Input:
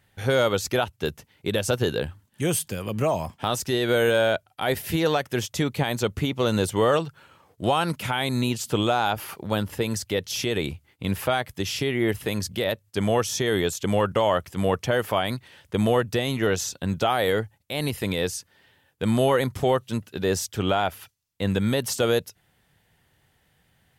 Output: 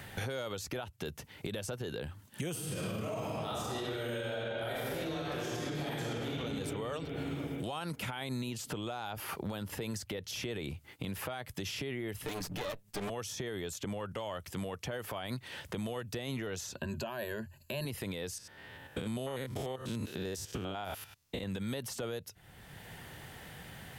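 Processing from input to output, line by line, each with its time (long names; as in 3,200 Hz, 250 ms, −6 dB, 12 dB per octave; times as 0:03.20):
0:02.51–0:06.38: thrown reverb, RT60 2.7 s, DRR −9.5 dB
0:12.26–0:13.10: lower of the sound and its delayed copy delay 6.7 ms
0:16.76–0:17.85: EQ curve with evenly spaced ripples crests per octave 1.4, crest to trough 16 dB
0:18.38–0:21.43: spectrum averaged block by block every 100 ms
whole clip: downward compressor 6 to 1, threshold −33 dBFS; brickwall limiter −30 dBFS; multiband upward and downward compressor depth 70%; level +1 dB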